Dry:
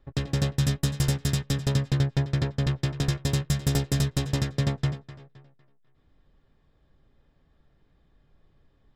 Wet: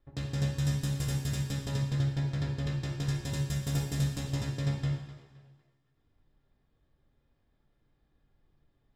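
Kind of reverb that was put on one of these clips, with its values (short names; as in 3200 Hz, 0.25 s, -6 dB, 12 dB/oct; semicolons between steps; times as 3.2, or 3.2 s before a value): two-slope reverb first 0.84 s, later 2.3 s, from -21 dB, DRR 0 dB; gain -10.5 dB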